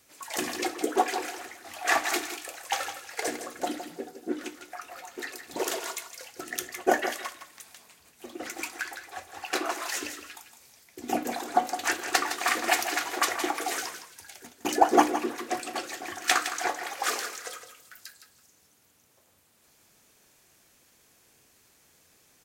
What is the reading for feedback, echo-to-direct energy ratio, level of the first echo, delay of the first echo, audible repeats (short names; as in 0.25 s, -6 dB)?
17%, -10.0 dB, -10.0 dB, 0.162 s, 2